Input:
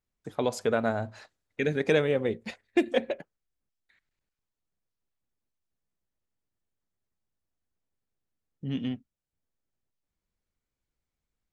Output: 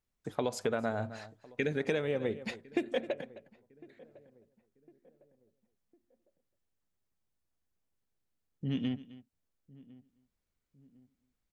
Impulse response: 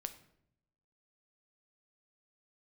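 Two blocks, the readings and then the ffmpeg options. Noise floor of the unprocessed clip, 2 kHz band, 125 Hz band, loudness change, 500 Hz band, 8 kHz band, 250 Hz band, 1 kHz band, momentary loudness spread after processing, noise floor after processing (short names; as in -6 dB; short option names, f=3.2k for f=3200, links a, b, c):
under -85 dBFS, -5.5 dB, -4.0 dB, -6.0 dB, -6.0 dB, n/a, -5.0 dB, -5.5 dB, 11 LU, -84 dBFS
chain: -filter_complex "[0:a]asplit=2[a][b];[b]aecho=0:1:261:0.1[c];[a][c]amix=inputs=2:normalize=0,acompressor=threshold=-28dB:ratio=6,asplit=2[d][e];[e]adelay=1055,lowpass=f=1k:p=1,volume=-21.5dB,asplit=2[f][g];[g]adelay=1055,lowpass=f=1k:p=1,volume=0.44,asplit=2[h][i];[i]adelay=1055,lowpass=f=1k:p=1,volume=0.44[j];[f][h][j]amix=inputs=3:normalize=0[k];[d][k]amix=inputs=2:normalize=0"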